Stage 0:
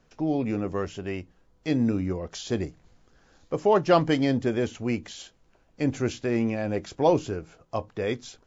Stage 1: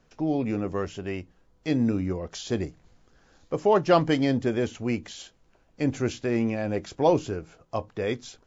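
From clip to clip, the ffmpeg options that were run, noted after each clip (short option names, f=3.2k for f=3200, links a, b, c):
-af anull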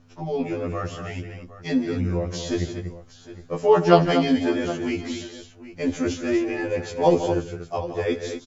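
-af "aecho=1:1:73|165|239|763:0.119|0.266|0.355|0.158,aeval=exprs='val(0)+0.00282*(sin(2*PI*50*n/s)+sin(2*PI*2*50*n/s)/2+sin(2*PI*3*50*n/s)/3+sin(2*PI*4*50*n/s)/4+sin(2*PI*5*50*n/s)/5)':c=same,afftfilt=real='re*2*eq(mod(b,4),0)':imag='im*2*eq(mod(b,4),0)':win_size=2048:overlap=0.75,volume=5dB"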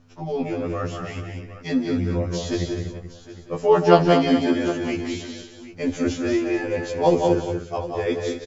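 -af "aecho=1:1:188:0.531"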